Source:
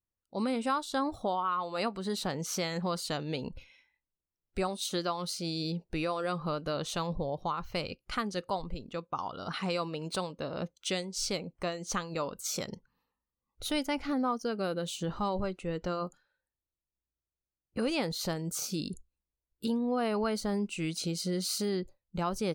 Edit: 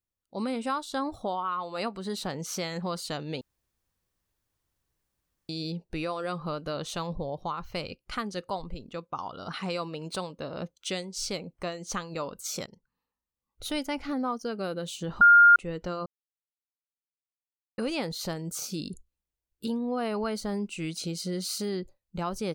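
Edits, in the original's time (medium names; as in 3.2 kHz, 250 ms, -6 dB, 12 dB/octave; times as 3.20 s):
3.41–5.49 s: room tone
12.66–13.68 s: fade in, from -14 dB
15.21–15.56 s: bleep 1.41 kHz -12 dBFS
16.06–17.78 s: mute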